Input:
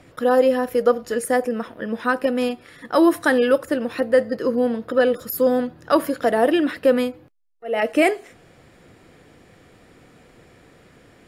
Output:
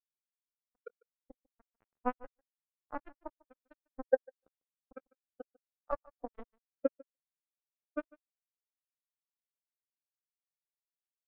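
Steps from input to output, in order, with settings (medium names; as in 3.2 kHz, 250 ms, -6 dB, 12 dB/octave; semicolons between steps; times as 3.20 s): fade-in on the opening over 1.62 s; graphic EQ with 31 bands 125 Hz -8 dB, 630 Hz +6 dB, 1 kHz +6 dB, 5 kHz +5 dB; compression 6:1, threshold -30 dBFS, peak gain reduction 20 dB; bit crusher 4-bit; 3.06–3.54 s: distance through air 73 m; feedback delay 148 ms, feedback 22%, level -6 dB; spectral contrast expander 4:1; trim +1 dB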